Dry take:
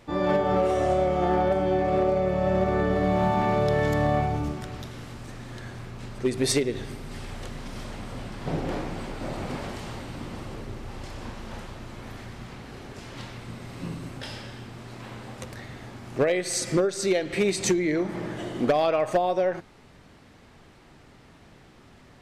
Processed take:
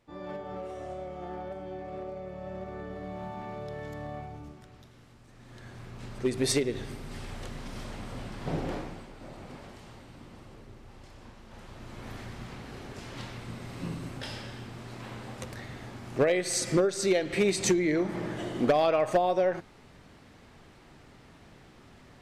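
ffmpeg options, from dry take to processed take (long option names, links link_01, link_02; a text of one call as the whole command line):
ffmpeg -i in.wav -af "volume=8dB,afade=type=in:start_time=5.3:duration=0.85:silence=0.223872,afade=type=out:start_time=8.63:duration=0.43:silence=0.334965,afade=type=in:start_time=11.5:duration=0.62:silence=0.281838" out.wav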